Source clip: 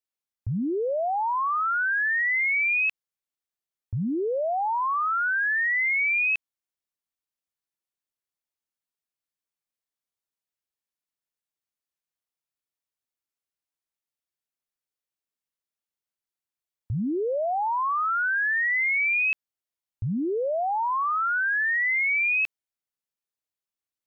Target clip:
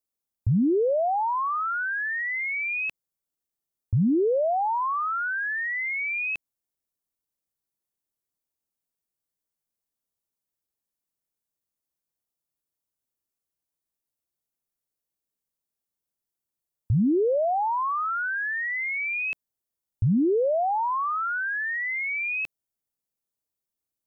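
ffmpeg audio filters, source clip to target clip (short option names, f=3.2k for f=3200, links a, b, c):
-af "equalizer=f=2.3k:w=0.43:g=-11.5,volume=6.5dB"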